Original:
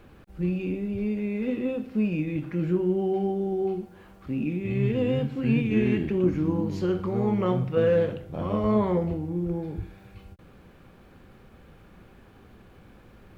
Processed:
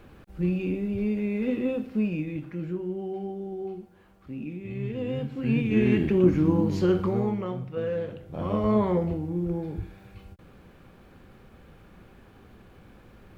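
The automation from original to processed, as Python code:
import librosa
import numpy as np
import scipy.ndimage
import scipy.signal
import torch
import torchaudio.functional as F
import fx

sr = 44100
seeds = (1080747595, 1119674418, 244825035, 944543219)

y = fx.gain(x, sr, db=fx.line((1.79, 1.0), (2.77, -7.5), (4.88, -7.5), (6.07, 3.5), (7.06, 3.5), (7.49, -8.0), (8.02, -8.0), (8.46, 0.0)))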